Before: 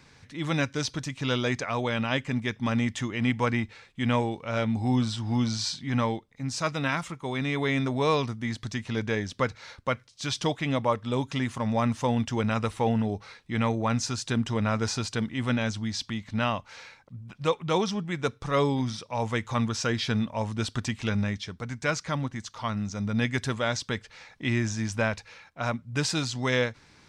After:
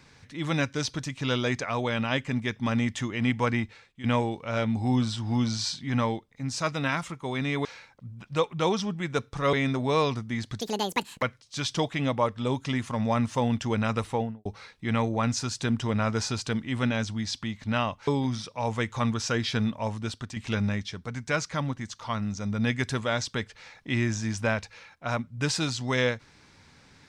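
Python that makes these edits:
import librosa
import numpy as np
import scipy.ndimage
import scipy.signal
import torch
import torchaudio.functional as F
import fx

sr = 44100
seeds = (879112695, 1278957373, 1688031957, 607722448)

y = fx.studio_fade_out(x, sr, start_s=12.72, length_s=0.4)
y = fx.edit(y, sr, fx.fade_out_to(start_s=3.63, length_s=0.41, floor_db=-14.0),
    fx.speed_span(start_s=8.73, length_s=1.16, speed=1.89),
    fx.move(start_s=16.74, length_s=1.88, to_s=7.65),
    fx.fade_out_to(start_s=20.35, length_s=0.56, floor_db=-9.5), tone=tone)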